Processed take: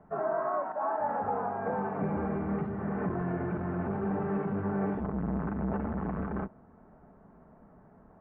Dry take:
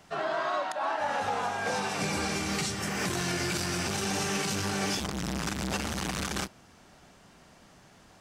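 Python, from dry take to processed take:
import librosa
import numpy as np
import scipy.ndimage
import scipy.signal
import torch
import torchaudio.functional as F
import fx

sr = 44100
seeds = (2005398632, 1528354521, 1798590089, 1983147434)

y = scipy.signal.sosfilt(scipy.signal.bessel(6, 890.0, 'lowpass', norm='mag', fs=sr, output='sos'), x)
y = y + 0.31 * np.pad(y, (int(4.6 * sr / 1000.0), 0))[:len(y)]
y = y * librosa.db_to_amplitude(1.5)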